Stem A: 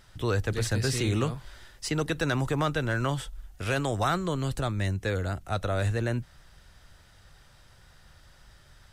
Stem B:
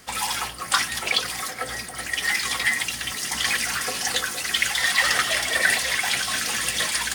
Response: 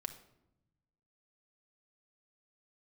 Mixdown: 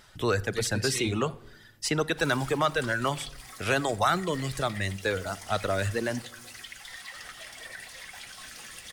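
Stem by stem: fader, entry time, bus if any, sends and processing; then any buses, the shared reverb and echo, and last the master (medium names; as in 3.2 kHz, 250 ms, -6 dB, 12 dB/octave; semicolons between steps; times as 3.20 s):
+0.5 dB, 0.00 s, send -3.5 dB, reverb removal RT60 1.5 s; bass shelf 130 Hz -11 dB
-15.0 dB, 2.10 s, no send, compression 3:1, threshold -27 dBFS, peak gain reduction 9.5 dB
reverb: on, RT60 0.85 s, pre-delay 5 ms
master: none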